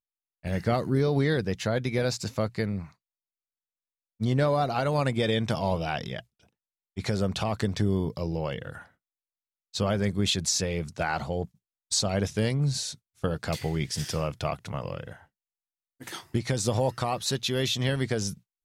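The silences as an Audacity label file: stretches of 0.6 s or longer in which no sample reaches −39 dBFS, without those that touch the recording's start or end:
2.860000	4.210000	silence
6.200000	6.970000	silence
8.810000	9.740000	silence
15.130000	16.010000	silence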